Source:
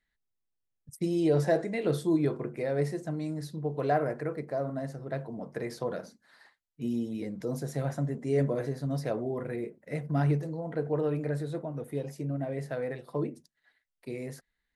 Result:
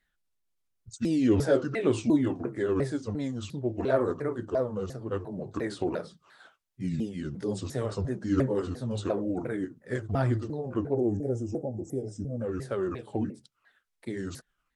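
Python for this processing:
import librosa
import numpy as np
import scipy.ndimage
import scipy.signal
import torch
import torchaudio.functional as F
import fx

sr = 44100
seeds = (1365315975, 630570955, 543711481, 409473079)

y = fx.pitch_ramps(x, sr, semitones=-7.5, every_ms=350)
y = fx.dynamic_eq(y, sr, hz=120.0, q=0.85, threshold_db=-42.0, ratio=4.0, max_db=-6)
y = fx.spec_box(y, sr, start_s=10.94, length_s=1.46, low_hz=840.0, high_hz=4900.0, gain_db=-21)
y = y * 10.0 ** (5.0 / 20.0)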